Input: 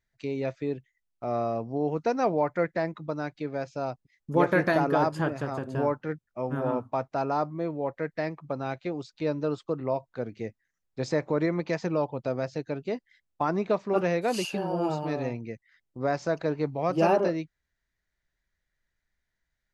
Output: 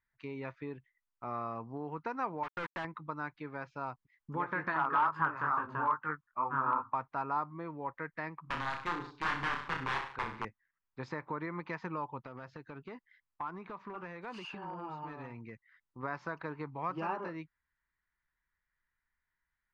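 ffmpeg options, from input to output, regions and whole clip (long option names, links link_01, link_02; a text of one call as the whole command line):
ffmpeg -i in.wav -filter_complex "[0:a]asettb=1/sr,asplit=3[link_01][link_02][link_03];[link_01]atrim=end=2.434[link_04];[link_02]atrim=start=2.43:end=2.85,asetpts=PTS-STARTPTS,afade=type=in:duration=0.004:curve=qsin,afade=type=out:start_time=0.416:duration=0.004:curve=qsin,acrusher=bits=4:mix=0:aa=0.5,asoftclip=type=hard:threshold=-26dB[link_05];[link_03]atrim=start=2.846[link_06];[link_04][link_05]acrossfade=duration=0.004:curve1=hsin:curve2=qsin[link_07];[link_07][link_06]acrossfade=duration=0.004:curve1=qsin:curve2=hsin,asettb=1/sr,asplit=3[link_08][link_09][link_10];[link_08]atrim=end=4.744[link_11];[link_09]atrim=start=4.74:end=6.94,asetpts=PTS-STARTPTS,afade=type=in:duration=0.004:curve=qsin,afade=type=out:start_time=2.196:duration=0.004:curve=qsin,equalizer=frequency=1200:width=1.2:gain=13.5,flanger=delay=18:depth=6.5:speed=2.3,asoftclip=type=hard:threshold=-14.5dB[link_12];[link_10]atrim=start=6.936[link_13];[link_11][link_12]acrossfade=duration=0.004:curve1=hsin:curve2=qsin[link_14];[link_14][link_13]acrossfade=duration=0.004:curve1=qsin:curve2=hsin,asettb=1/sr,asplit=3[link_15][link_16][link_17];[link_15]atrim=end=8.414[link_18];[link_16]atrim=start=8.41:end=10.45,asetpts=PTS-STARTPTS,afade=type=in:duration=0.004:curve=qsin,afade=type=out:start_time=2.036:duration=0.004:curve=qsin,lowshelf=frequency=100:gain=4,aeval=exprs='(mod(16.8*val(0)+1,2)-1)/16.8':channel_layout=same,aecho=1:1:30|63|99.3|139.2|183.2:0.631|0.398|0.251|0.158|0.1,atrim=end_sample=89964[link_19];[link_17]atrim=start=10.446[link_20];[link_18][link_19]acrossfade=duration=0.004:curve1=hsin:curve2=qsin[link_21];[link_21][link_20]acrossfade=duration=0.004:curve1=qsin:curve2=hsin,asettb=1/sr,asplit=3[link_22][link_23][link_24];[link_22]atrim=end=12.244[link_25];[link_23]atrim=start=12.24:end=16.03,asetpts=PTS-STARTPTS,afade=type=in:duration=0.004:curve=qsin,afade=type=out:start_time=3.786:duration=0.004:curve=qsin,acompressor=threshold=-31dB:ratio=10:attack=3.2:release=140:knee=1:detection=peak,aeval=exprs='clip(val(0),-1,0.0376)':channel_layout=same[link_26];[link_24]atrim=start=16.026[link_27];[link_25][link_26]acrossfade=duration=0.004:curve1=hsin:curve2=qsin[link_28];[link_28][link_27]acrossfade=duration=0.004:curve1=qsin:curve2=hsin,lowpass=2200,acompressor=threshold=-26dB:ratio=5,lowshelf=frequency=800:width_type=q:width=3:gain=-7,volume=-1.5dB" out.wav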